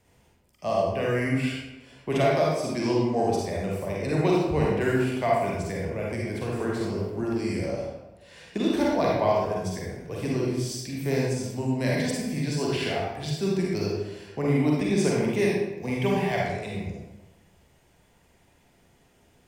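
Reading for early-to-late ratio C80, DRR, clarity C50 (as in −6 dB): 2.5 dB, −4.0 dB, −1.5 dB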